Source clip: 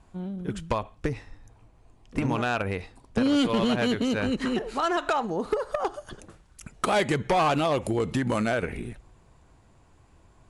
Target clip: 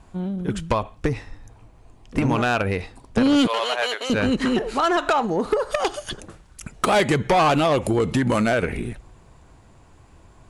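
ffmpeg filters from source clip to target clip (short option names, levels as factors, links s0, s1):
-filter_complex "[0:a]asettb=1/sr,asplit=3[s0][s1][s2];[s0]atrim=end=3.474[s3];[s1]atrim=start=3.47:end=4.1,asetpts=PTS-STARTPTS,afade=t=in:d=0.004:c=qsin,afade=t=out:st=0.626:d=0.004:c=qsin,highpass=f=570:w=0.5412,highpass=f=570:w=1.3066[s4];[s2]atrim=start=4.096[s5];[s3][s4]acrossfade=d=0.004:c1=hsin:c2=qsin[s6];[s6][s5]acrossfade=d=0.004:c1=qsin:c2=hsin,asplit=3[s7][s8][s9];[s7]afade=t=out:st=5.7:d=0.02[s10];[s8]highshelf=f=1700:t=q:w=1.5:g=9,afade=t=in:st=5.7:d=0.02,afade=t=out:st=6.12:d=0.02[s11];[s9]afade=t=in:st=6.12:d=0.02[s12];[s10][s11][s12]amix=inputs=3:normalize=0,asoftclip=type=tanh:threshold=0.126,volume=2.24"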